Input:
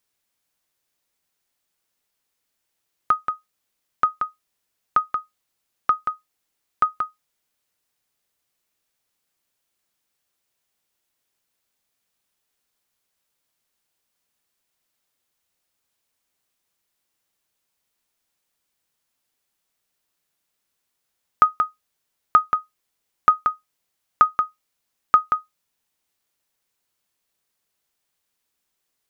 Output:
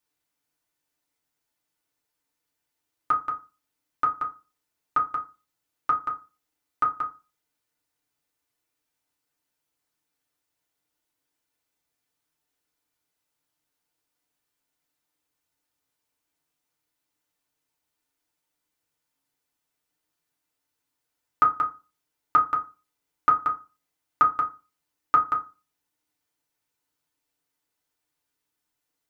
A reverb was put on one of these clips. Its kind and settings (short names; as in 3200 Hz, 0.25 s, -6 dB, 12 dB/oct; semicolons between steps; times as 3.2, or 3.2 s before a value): FDN reverb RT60 0.3 s, low-frequency decay 1.2×, high-frequency decay 0.5×, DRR -2.5 dB; gain -7.5 dB